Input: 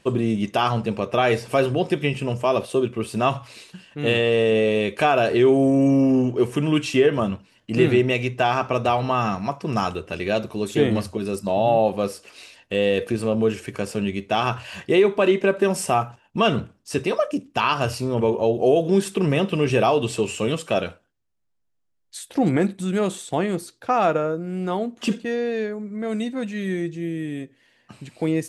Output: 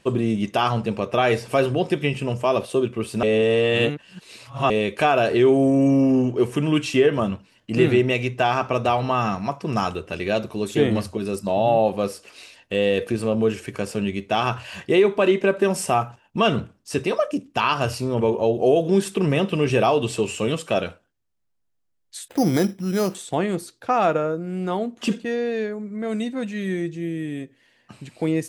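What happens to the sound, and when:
0:03.23–0:04.70: reverse
0:22.28–0:23.15: bad sample-rate conversion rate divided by 8×, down filtered, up hold

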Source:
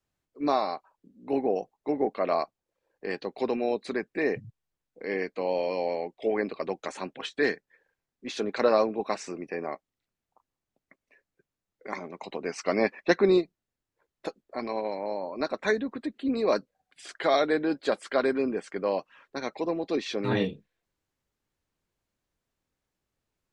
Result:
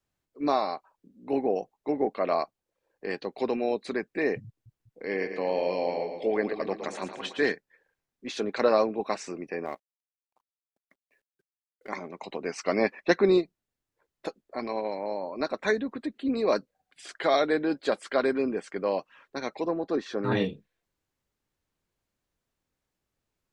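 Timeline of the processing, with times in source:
0:04.46–0:07.52: echo with a time of its own for lows and highs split 350 Hz, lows 196 ms, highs 113 ms, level −8 dB
0:09.65–0:11.89: mu-law and A-law mismatch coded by A
0:19.68–0:20.32: high shelf with overshoot 1,900 Hz −6 dB, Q 3

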